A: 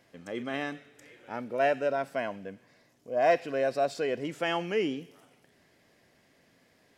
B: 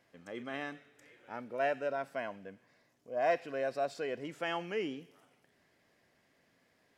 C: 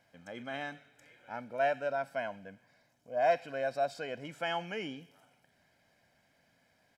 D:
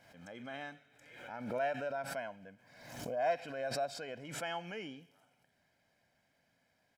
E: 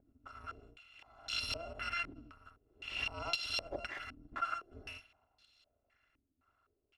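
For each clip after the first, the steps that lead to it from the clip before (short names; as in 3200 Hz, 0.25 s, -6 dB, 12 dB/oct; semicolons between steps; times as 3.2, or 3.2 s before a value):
bell 1300 Hz +3.5 dB 1.9 oct; gain -8 dB
comb 1.3 ms, depth 56%
backwards sustainer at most 58 dB/s; gain -5.5 dB
FFT order left unsorted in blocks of 256 samples; pre-echo 0.215 s -20 dB; stepped low-pass 3.9 Hz 280–3900 Hz; gain +6.5 dB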